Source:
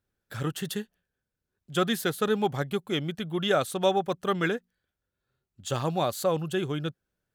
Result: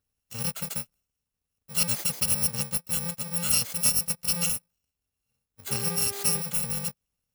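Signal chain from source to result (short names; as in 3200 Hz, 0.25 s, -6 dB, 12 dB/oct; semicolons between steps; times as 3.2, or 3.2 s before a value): FFT order left unsorted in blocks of 128 samples; 5.68–6.39 buzz 400 Hz, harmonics 33, -41 dBFS -7 dB/oct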